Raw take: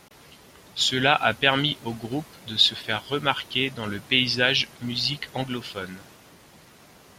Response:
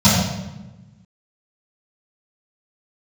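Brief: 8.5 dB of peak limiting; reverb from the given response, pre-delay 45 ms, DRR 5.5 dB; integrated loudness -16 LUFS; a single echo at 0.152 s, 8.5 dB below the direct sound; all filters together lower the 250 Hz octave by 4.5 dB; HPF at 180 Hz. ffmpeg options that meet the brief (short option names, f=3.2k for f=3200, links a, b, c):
-filter_complex "[0:a]highpass=180,equalizer=f=250:t=o:g=-4,alimiter=limit=-11dB:level=0:latency=1,aecho=1:1:152:0.376,asplit=2[a][b];[1:a]atrim=start_sample=2205,adelay=45[c];[b][c]afir=irnorm=-1:irlink=0,volume=-29.5dB[d];[a][d]amix=inputs=2:normalize=0,volume=8.5dB"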